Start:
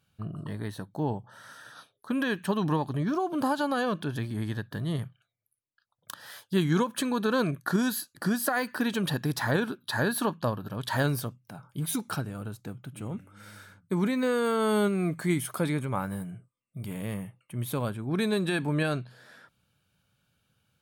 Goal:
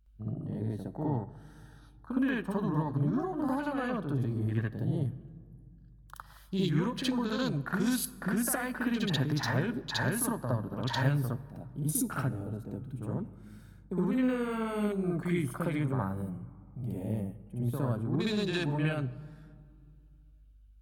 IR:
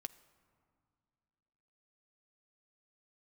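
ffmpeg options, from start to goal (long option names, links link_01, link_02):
-filter_complex "[0:a]aeval=exprs='val(0)+0.00141*(sin(2*PI*50*n/s)+sin(2*PI*2*50*n/s)/2+sin(2*PI*3*50*n/s)/3+sin(2*PI*4*50*n/s)/4+sin(2*PI*5*50*n/s)/5)':channel_layout=same,acrossover=split=180|3000[link_01][link_02][link_03];[link_02]acompressor=threshold=-32dB:ratio=8[link_04];[link_01][link_04][link_03]amix=inputs=3:normalize=0,afwtdn=0.00891,asplit=2[link_05][link_06];[1:a]atrim=start_sample=2205,highshelf=frequency=11000:gain=7.5,adelay=63[link_07];[link_06][link_07]afir=irnorm=-1:irlink=0,volume=8.5dB[link_08];[link_05][link_08]amix=inputs=2:normalize=0,volume=-4dB"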